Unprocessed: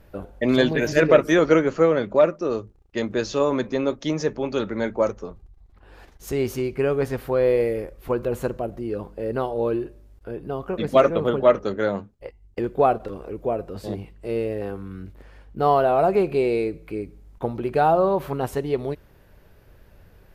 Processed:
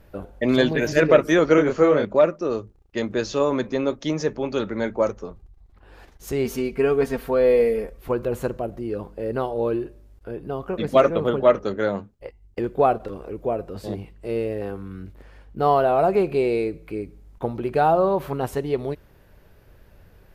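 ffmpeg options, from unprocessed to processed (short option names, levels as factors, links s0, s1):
-filter_complex "[0:a]asettb=1/sr,asplit=3[s0][s1][s2];[s0]atrim=end=1.554[s3];[s1]atrim=start=1.55:end=2.05,asetpts=PTS-STARTPTS,afade=t=in:d=0.004:c=qsin,afade=t=out:st=0.496:d=0.004:c=qsin,asplit=2[s4][s5];[s5]adelay=27,volume=0.708[s6];[s4][s6]amix=inputs=2:normalize=0,atrim=end_sample=22050[s7];[s2]atrim=start=2.046[s8];[s3][s7]acrossfade=d=0.004:c1=hsin:c2=qsin[s9];[s9][s8]acrossfade=d=0.004:c1=qsin:c2=hsin,asettb=1/sr,asplit=3[s10][s11][s12];[s10]atrim=end=6.454[s13];[s11]atrim=start=6.45:end=7.98,asetpts=PTS-STARTPTS,afade=t=in:d=0.004:c=qsin,afade=t=out:st=1.526:d=0.004:c=qsin,aecho=1:1:4.4:0.65,atrim=end_sample=67473[s14];[s12]atrim=start=7.976[s15];[s13][s14]acrossfade=d=0.004:c1=hsin:c2=qsin[s16];[s16][s15]acrossfade=d=0.004:c1=qsin:c2=hsin"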